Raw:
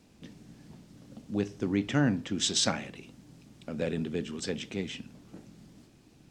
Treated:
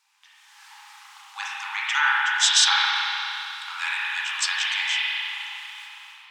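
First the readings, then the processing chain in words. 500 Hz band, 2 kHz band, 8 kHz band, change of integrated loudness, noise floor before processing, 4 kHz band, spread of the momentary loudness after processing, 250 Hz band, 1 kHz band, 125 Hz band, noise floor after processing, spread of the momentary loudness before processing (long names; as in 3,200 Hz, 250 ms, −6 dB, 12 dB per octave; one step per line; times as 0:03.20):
below −40 dB, +18.5 dB, +9.5 dB, +9.0 dB, −60 dBFS, +13.5 dB, 19 LU, below −40 dB, +15.0 dB, below −40 dB, −55 dBFS, 24 LU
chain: automatic gain control gain up to 15.5 dB
linear-phase brick-wall high-pass 790 Hz
spring reverb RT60 3.1 s, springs 31/37 ms, chirp 60 ms, DRR −6.5 dB
level −1.5 dB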